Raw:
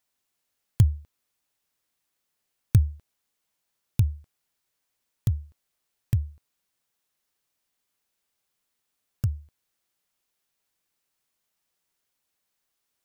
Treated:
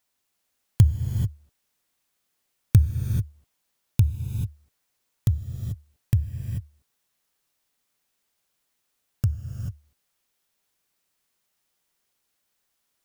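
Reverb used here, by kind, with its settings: non-linear reverb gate 0.46 s rising, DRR 5 dB; gain +2.5 dB

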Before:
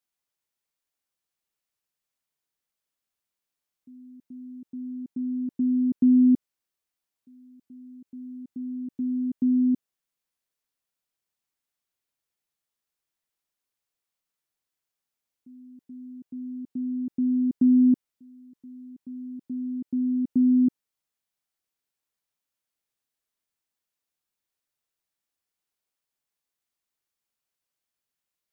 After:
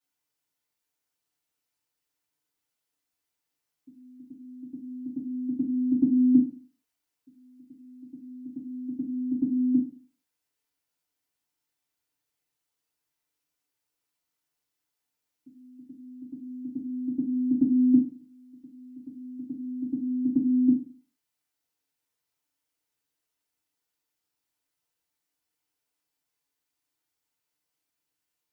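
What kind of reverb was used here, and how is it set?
FDN reverb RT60 0.43 s, low-frequency decay 1×, high-frequency decay 0.9×, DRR -7 dB; gain -5 dB

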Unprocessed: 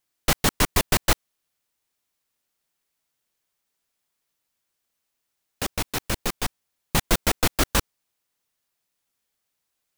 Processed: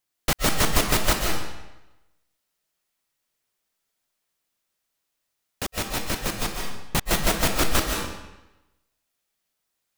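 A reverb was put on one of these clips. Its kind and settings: digital reverb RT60 1 s, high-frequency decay 0.9×, pre-delay 0.105 s, DRR 0.5 dB; gain -2 dB

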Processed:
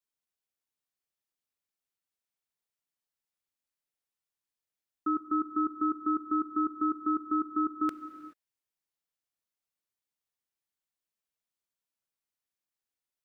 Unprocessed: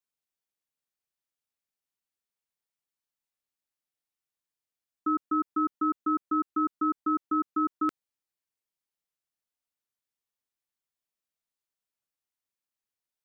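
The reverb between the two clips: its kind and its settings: non-linear reverb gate 0.45 s flat, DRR 11 dB; gain -2 dB

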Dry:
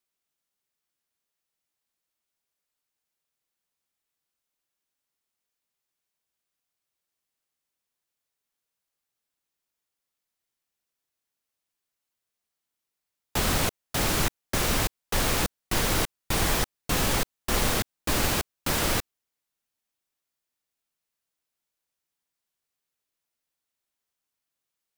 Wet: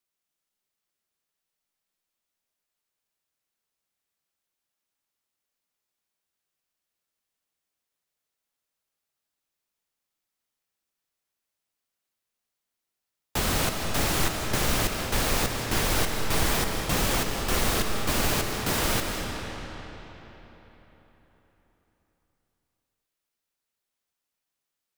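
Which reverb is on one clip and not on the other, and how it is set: digital reverb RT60 4.1 s, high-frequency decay 0.75×, pre-delay 0.12 s, DRR 2.5 dB; gain -1 dB

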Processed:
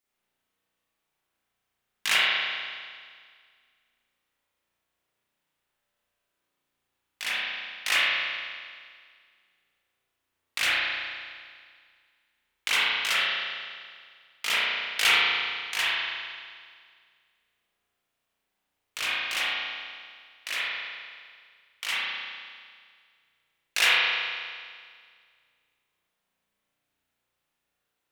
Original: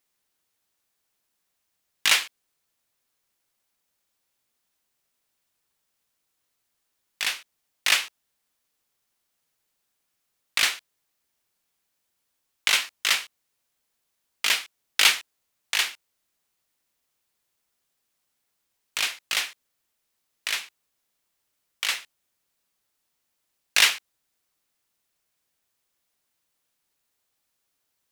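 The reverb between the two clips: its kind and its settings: spring tank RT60 1.9 s, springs 34 ms, chirp 70 ms, DRR -9.5 dB; gain -8 dB

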